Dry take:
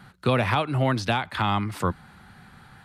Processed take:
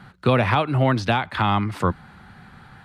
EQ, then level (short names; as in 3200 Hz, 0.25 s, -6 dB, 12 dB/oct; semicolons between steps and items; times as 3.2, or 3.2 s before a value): LPF 3700 Hz 6 dB/oct; +4.0 dB